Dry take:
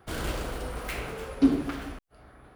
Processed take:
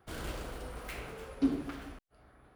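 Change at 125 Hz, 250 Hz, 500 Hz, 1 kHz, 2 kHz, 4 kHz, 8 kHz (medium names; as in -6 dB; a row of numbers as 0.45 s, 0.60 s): -8.0 dB, -8.0 dB, -8.0 dB, -8.0 dB, -8.0 dB, -8.0 dB, -8.0 dB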